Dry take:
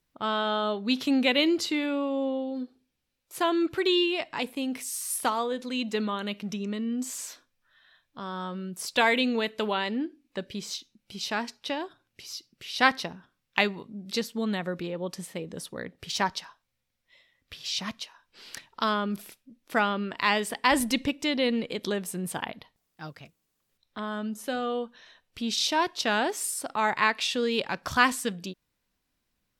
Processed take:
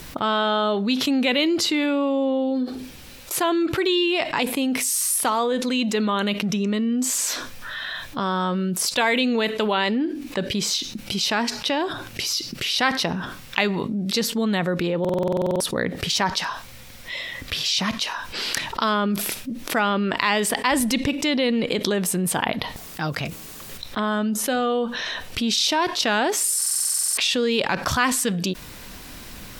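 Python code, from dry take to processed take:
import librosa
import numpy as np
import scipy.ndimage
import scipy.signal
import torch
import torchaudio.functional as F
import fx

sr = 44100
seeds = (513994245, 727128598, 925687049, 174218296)

y = fx.buffer_glitch(x, sr, at_s=(15.0, 26.57), block=2048, repeats=12)
y = fx.env_flatten(y, sr, amount_pct=70)
y = y * 10.0 ** (-1.0 / 20.0)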